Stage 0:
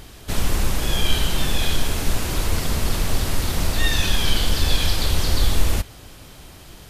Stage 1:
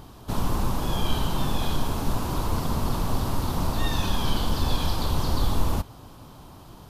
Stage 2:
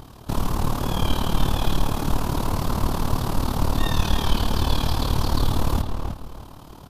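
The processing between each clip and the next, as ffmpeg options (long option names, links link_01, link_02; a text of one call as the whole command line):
ffmpeg -i in.wav -af "equalizer=frequency=125:width_type=o:width=1:gain=6,equalizer=frequency=250:width_type=o:width=1:gain=6,equalizer=frequency=1000:width_type=o:width=1:gain=12,equalizer=frequency=2000:width_type=o:width=1:gain=-9,equalizer=frequency=8000:width_type=o:width=1:gain=-5,volume=-6.5dB" out.wav
ffmpeg -i in.wav -filter_complex "[0:a]asplit=2[link_01][link_02];[link_02]adelay=319,lowpass=frequency=3200:poles=1,volume=-5.5dB,asplit=2[link_03][link_04];[link_04]adelay=319,lowpass=frequency=3200:poles=1,volume=0.26,asplit=2[link_05][link_06];[link_06]adelay=319,lowpass=frequency=3200:poles=1,volume=0.26[link_07];[link_01][link_03][link_05][link_07]amix=inputs=4:normalize=0,tremolo=f=37:d=0.75,volume=5dB" out.wav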